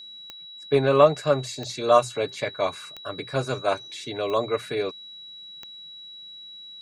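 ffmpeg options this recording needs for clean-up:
ffmpeg -i in.wav -af "adeclick=threshold=4,bandreject=frequency=3900:width=30" out.wav

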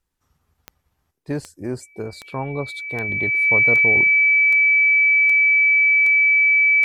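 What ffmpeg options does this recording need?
ffmpeg -i in.wav -af "adeclick=threshold=4,bandreject=frequency=2300:width=30" out.wav

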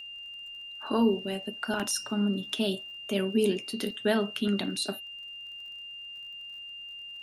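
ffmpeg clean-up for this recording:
ffmpeg -i in.wav -af "adeclick=threshold=4,bandreject=frequency=2800:width=30,agate=range=-21dB:threshold=-35dB" out.wav

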